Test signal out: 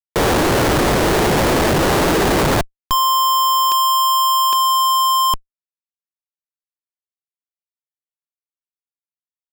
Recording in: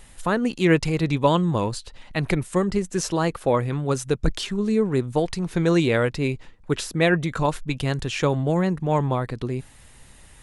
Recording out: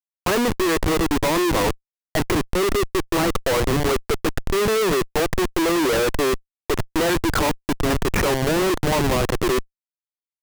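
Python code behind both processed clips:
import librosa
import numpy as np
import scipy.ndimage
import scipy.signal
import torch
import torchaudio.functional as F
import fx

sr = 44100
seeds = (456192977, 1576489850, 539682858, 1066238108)

y = scipy.signal.sosfilt(scipy.signal.ellip(3, 1.0, 70, [340.0, 1900.0], 'bandpass', fs=sr, output='sos'), x)
y = fx.schmitt(y, sr, flips_db=-34.5)
y = F.gain(torch.from_numpy(y), 8.0).numpy()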